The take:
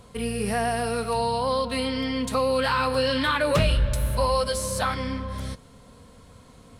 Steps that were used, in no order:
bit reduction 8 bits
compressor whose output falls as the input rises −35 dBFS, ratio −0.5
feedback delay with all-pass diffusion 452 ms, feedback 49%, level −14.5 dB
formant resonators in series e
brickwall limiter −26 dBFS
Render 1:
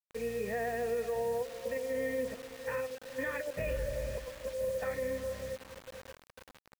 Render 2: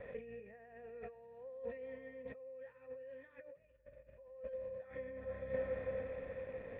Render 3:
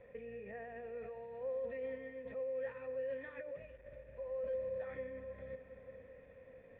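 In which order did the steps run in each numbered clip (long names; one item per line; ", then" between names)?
formant resonators in series, then compressor whose output falls as the input rises, then feedback delay with all-pass diffusion, then bit reduction, then brickwall limiter
bit reduction, then feedback delay with all-pass diffusion, then compressor whose output falls as the input rises, then formant resonators in series, then brickwall limiter
brickwall limiter, then feedback delay with all-pass diffusion, then compressor whose output falls as the input rises, then bit reduction, then formant resonators in series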